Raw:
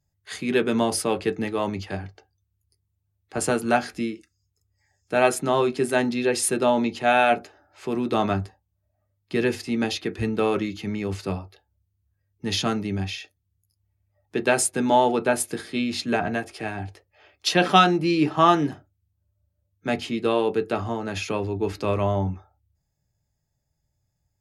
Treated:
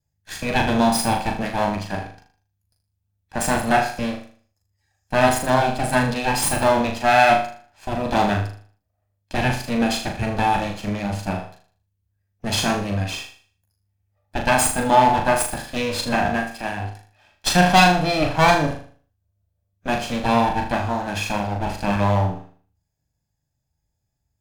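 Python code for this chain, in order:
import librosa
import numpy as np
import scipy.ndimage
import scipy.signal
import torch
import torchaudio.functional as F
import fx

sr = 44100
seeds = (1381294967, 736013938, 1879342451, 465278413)

p1 = fx.lower_of_two(x, sr, delay_ms=1.2)
p2 = fx.leveller(p1, sr, passes=1)
y = p2 + fx.room_flutter(p2, sr, wall_m=6.7, rt60_s=0.46, dry=0)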